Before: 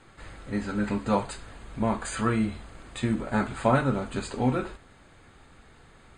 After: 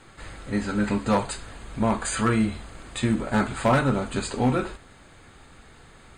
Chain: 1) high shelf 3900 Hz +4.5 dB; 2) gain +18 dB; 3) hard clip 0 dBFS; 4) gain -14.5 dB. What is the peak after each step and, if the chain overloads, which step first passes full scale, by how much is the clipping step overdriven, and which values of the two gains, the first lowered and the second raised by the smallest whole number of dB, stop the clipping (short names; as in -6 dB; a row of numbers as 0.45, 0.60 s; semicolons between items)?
-9.0, +9.0, 0.0, -14.5 dBFS; step 2, 9.0 dB; step 2 +9 dB, step 4 -5.5 dB